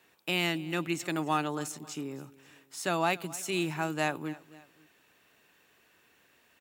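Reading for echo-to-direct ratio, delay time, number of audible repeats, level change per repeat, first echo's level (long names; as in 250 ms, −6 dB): −19.0 dB, 268 ms, 2, −6.5 dB, −20.0 dB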